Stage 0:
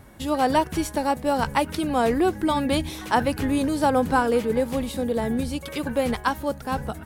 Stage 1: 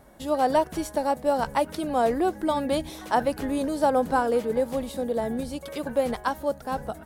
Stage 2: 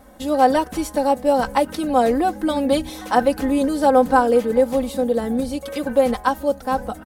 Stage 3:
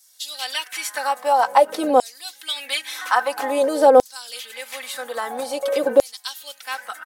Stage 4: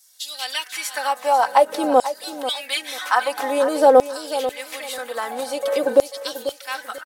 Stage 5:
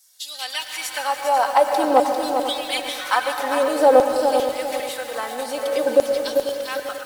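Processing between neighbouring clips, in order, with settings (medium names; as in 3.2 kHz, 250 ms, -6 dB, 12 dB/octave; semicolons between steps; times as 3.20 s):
fifteen-band graphic EQ 100 Hz -11 dB, 630 Hz +7 dB, 2.5 kHz -4 dB; trim -4.5 dB
comb 3.9 ms, depth 71%; trim +4 dB
LFO high-pass saw down 0.5 Hz 370–5900 Hz; in parallel at +2 dB: compression, threshold -24 dBFS, peak gain reduction 17.5 dB; on the sum: trim -3 dB
feedback delay 491 ms, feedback 25%, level -12 dB
on a send at -7 dB: reverberation RT60 1.7 s, pre-delay 106 ms; on the sum: bit-crushed delay 398 ms, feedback 35%, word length 6-bit, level -6 dB; trim -1.5 dB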